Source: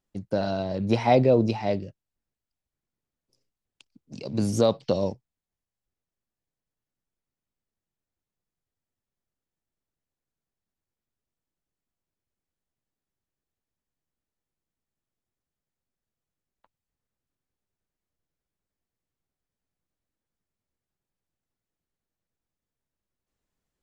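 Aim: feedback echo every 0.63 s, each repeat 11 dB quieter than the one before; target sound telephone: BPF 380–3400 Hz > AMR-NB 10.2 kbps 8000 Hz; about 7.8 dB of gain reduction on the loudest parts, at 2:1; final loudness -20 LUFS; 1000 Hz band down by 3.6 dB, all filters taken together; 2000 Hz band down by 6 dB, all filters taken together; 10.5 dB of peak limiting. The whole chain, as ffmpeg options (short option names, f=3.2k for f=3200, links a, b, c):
-af "equalizer=f=1k:t=o:g=-4.5,equalizer=f=2k:t=o:g=-5.5,acompressor=threshold=-30dB:ratio=2,alimiter=level_in=2.5dB:limit=-24dB:level=0:latency=1,volume=-2.5dB,highpass=380,lowpass=3.4k,aecho=1:1:630|1260|1890:0.282|0.0789|0.0221,volume=22.5dB" -ar 8000 -c:a libopencore_amrnb -b:a 10200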